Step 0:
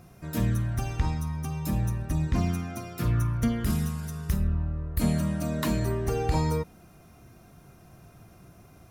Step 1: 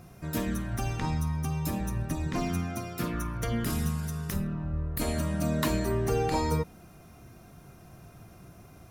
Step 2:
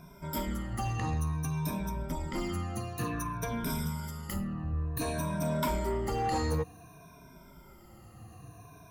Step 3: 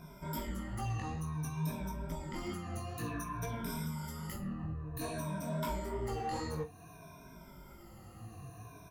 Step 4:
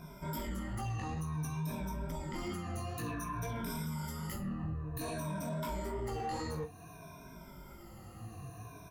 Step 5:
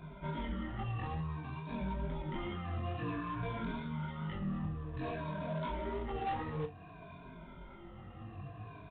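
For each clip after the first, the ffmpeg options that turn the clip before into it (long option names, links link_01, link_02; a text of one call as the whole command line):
ffmpeg -i in.wav -af "afftfilt=real='re*lt(hypot(re,im),0.398)':imag='im*lt(hypot(re,im),0.398)':win_size=1024:overlap=0.75,volume=1.5dB" out.wav
ffmpeg -i in.wav -af "afftfilt=real='re*pow(10,19/40*sin(2*PI*(1.6*log(max(b,1)*sr/1024/100)/log(2)-(-0.55)*(pts-256)/sr)))':imag='im*pow(10,19/40*sin(2*PI*(1.6*log(max(b,1)*sr/1024/100)/log(2)-(-0.55)*(pts-256)/sr)))':win_size=1024:overlap=0.75,equalizer=frequency=990:width=6.6:gain=9,asoftclip=type=tanh:threshold=-19dB,volume=-5dB" out.wav
ffmpeg -i in.wav -filter_complex "[0:a]alimiter=level_in=7.5dB:limit=-24dB:level=0:latency=1:release=300,volume=-7.5dB,flanger=delay=17.5:depth=4.5:speed=2.3,asplit=2[link_01][link_02];[link_02]adelay=44,volume=-13.5dB[link_03];[link_01][link_03]amix=inputs=2:normalize=0,volume=3dB" out.wav
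ffmpeg -i in.wav -af "alimiter=level_in=9dB:limit=-24dB:level=0:latency=1:release=15,volume=-9dB,volume=2dB" out.wav
ffmpeg -i in.wav -filter_complex "[0:a]flanger=delay=20:depth=3.9:speed=0.46,acrossover=split=400[link_01][link_02];[link_02]acrusher=bits=2:mode=log:mix=0:aa=0.000001[link_03];[link_01][link_03]amix=inputs=2:normalize=0,aresample=8000,aresample=44100,volume=3dB" out.wav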